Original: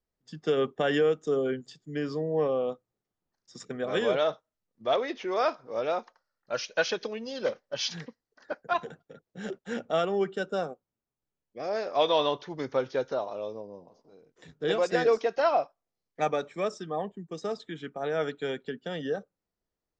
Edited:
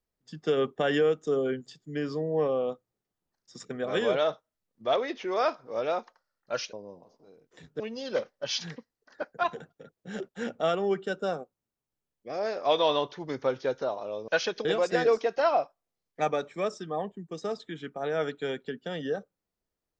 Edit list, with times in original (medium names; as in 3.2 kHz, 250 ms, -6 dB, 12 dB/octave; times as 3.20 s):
6.73–7.10 s: swap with 13.58–14.65 s